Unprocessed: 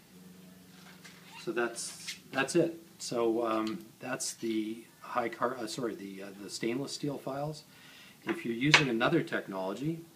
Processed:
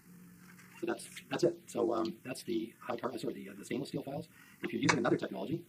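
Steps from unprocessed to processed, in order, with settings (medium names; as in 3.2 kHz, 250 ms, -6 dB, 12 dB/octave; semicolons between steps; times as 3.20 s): touch-sensitive phaser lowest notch 580 Hz, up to 3.1 kHz, full sweep at -25 dBFS; granular stretch 0.56×, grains 40 ms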